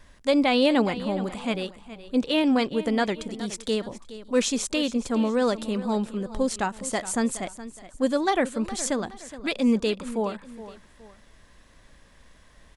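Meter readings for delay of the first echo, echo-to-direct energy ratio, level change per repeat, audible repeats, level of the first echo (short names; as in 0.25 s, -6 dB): 0.418 s, -14.5 dB, -8.5 dB, 2, -15.0 dB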